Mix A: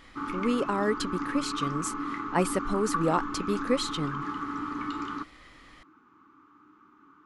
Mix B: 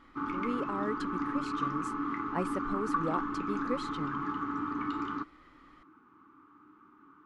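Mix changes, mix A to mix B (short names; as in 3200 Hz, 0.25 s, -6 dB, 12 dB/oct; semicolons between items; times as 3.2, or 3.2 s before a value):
speech -8.0 dB; master: add high shelf 3900 Hz -12 dB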